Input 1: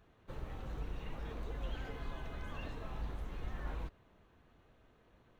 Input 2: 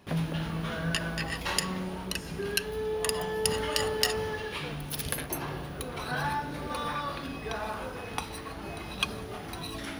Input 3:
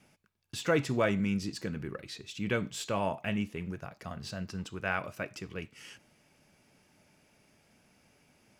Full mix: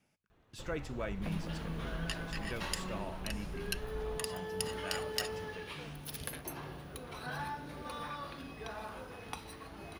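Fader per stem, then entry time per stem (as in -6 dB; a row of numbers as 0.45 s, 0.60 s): -2.0 dB, -9.0 dB, -11.5 dB; 0.30 s, 1.15 s, 0.00 s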